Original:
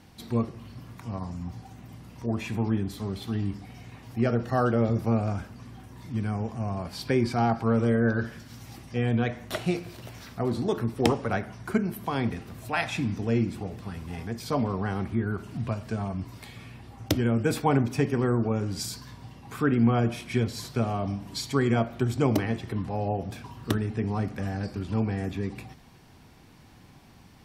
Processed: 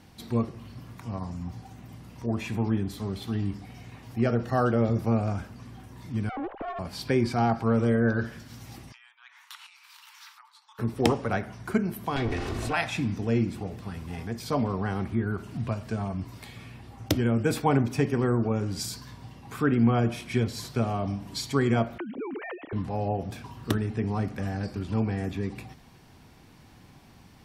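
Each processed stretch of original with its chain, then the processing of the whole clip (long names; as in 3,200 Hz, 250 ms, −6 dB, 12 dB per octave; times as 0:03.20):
0:06.29–0:06.79: three sine waves on the formant tracks + tube saturation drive 28 dB, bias 0.7
0:08.92–0:10.79: downward compressor 12 to 1, threshold −36 dBFS + Chebyshev high-pass with heavy ripple 870 Hz, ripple 3 dB
0:12.16–0:12.73: lower of the sound and its delayed copy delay 2.7 ms + low-pass filter 7,600 Hz + envelope flattener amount 70%
0:21.98–0:22.73: three sine waves on the formant tracks + downward compressor 5 to 1, threshold −33 dBFS
whole clip: no processing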